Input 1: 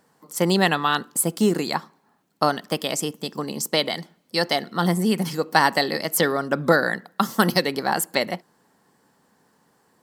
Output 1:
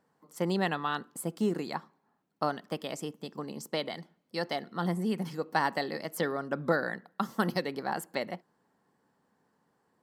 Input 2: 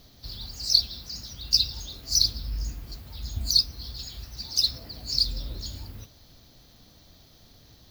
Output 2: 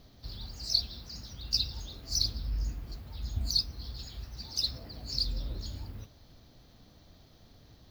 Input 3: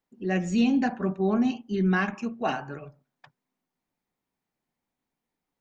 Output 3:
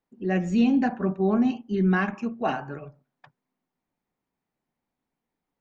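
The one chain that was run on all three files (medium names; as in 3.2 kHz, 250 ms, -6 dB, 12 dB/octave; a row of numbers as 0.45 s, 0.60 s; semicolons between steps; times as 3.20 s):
treble shelf 3.4 kHz -10 dB; peak normalisation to -12 dBFS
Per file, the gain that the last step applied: -9.5 dB, -1.5 dB, +2.0 dB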